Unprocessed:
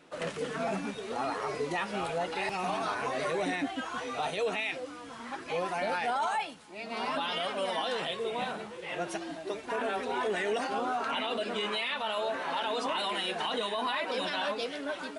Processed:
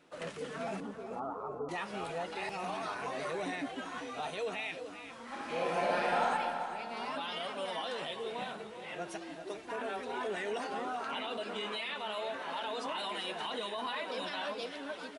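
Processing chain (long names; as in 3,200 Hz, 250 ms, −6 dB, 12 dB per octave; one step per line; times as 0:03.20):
0:00.80–0:01.69: Butterworth low-pass 1,400 Hz 96 dB per octave
0:05.24–0:06.23: thrown reverb, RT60 2.2 s, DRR −5 dB
repeating echo 394 ms, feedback 17%, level −11 dB
level −6 dB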